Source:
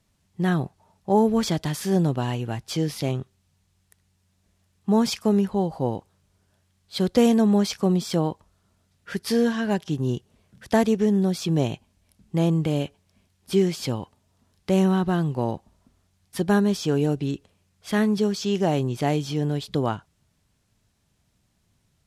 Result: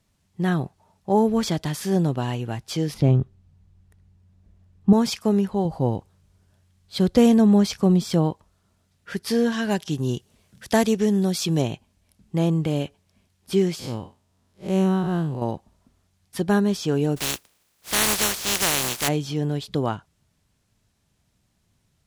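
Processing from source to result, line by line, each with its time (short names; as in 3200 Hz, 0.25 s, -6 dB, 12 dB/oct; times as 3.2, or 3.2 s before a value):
2.94–4.93 tilt -3.5 dB/oct
5.65–8.31 low shelf 160 Hz +9 dB
9.52–11.62 high shelf 2700 Hz +8 dB
13.79–15.42 time blur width 0.116 s
17.16–19.07 spectral contrast lowered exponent 0.21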